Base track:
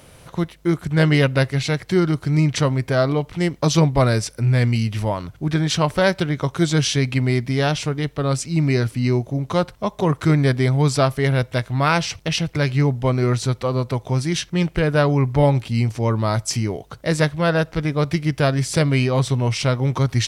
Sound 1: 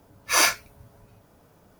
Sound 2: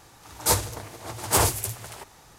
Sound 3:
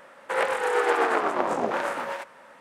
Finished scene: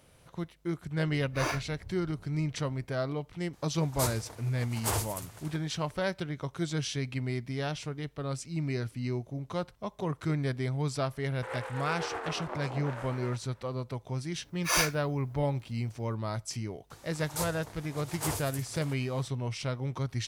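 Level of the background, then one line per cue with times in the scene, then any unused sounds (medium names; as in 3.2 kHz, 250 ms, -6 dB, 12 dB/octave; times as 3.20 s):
base track -14 dB
1.06 s: add 1 -10 dB + tilt EQ -4 dB/octave
3.53 s: add 2 -10.5 dB
11.13 s: add 3 -14 dB
14.36 s: add 1 -7.5 dB
16.90 s: add 2 -12 dB + three bands compressed up and down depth 40%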